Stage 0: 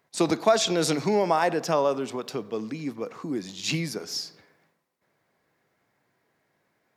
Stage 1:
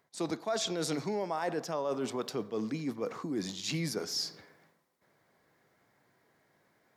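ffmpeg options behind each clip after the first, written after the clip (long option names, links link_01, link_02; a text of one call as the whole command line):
ffmpeg -i in.wav -af "equalizer=frequency=2600:width=5.1:gain=-4.5,areverse,acompressor=threshold=-33dB:ratio=6,areverse,volume=2dB" out.wav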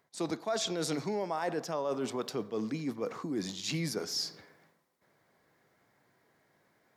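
ffmpeg -i in.wav -af anull out.wav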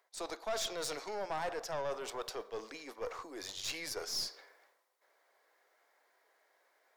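ffmpeg -i in.wav -af "highpass=frequency=470:width=0.5412,highpass=frequency=470:width=1.3066,aeval=exprs='(tanh(39.8*val(0)+0.45)-tanh(0.45))/39.8':channel_layout=same,volume=1dB" out.wav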